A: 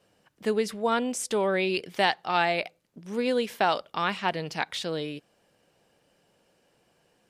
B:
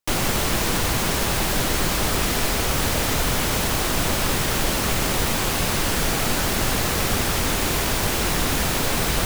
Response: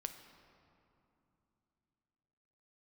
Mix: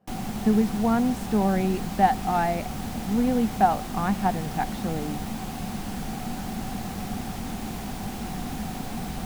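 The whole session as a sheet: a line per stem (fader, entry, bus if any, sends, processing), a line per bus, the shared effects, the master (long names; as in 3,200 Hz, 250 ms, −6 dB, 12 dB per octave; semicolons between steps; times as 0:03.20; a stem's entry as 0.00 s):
−5.5 dB, 0.00 s, no send, flat-topped bell 5,200 Hz −10.5 dB 2.4 octaves
−17.5 dB, 0.00 s, no send, no processing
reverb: not used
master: low-shelf EQ 140 Hz +6.5 dB; hollow resonant body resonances 210/750 Hz, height 16 dB, ringing for 45 ms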